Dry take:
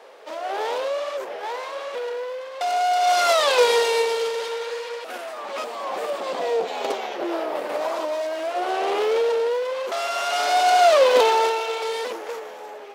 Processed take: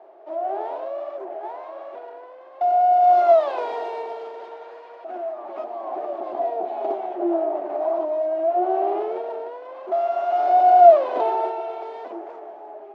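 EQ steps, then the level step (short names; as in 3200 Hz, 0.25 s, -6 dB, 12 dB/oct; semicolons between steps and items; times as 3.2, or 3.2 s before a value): double band-pass 490 Hz, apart 0.9 oct; air absorption 57 m; +7.5 dB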